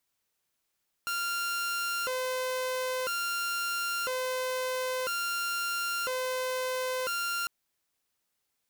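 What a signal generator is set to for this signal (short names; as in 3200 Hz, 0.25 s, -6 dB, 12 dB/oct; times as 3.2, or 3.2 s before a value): siren hi-lo 512–1390 Hz 0.5/s saw -27 dBFS 6.40 s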